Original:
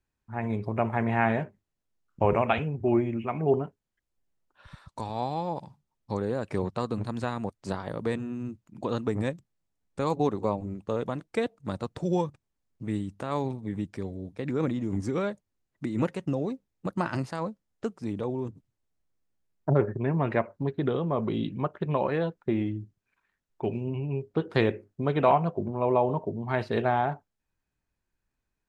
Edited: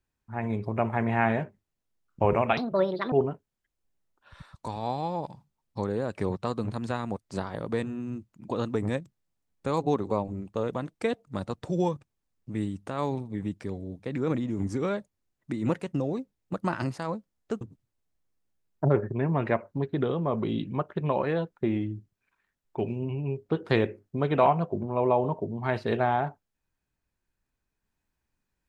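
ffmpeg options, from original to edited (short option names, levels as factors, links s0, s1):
-filter_complex "[0:a]asplit=4[s0][s1][s2][s3];[s0]atrim=end=2.574[s4];[s1]atrim=start=2.57:end=3.45,asetpts=PTS-STARTPTS,asetrate=70560,aresample=44100[s5];[s2]atrim=start=3.446:end=17.942[s6];[s3]atrim=start=18.458[s7];[s4][s5]acrossfade=d=0.004:c1=hsin:c2=hsin[s8];[s8][s6]acrossfade=d=0.004:c1=hsin:c2=hsin[s9];[s9][s7]acrossfade=d=0.004:c1=hsin:c2=hsin"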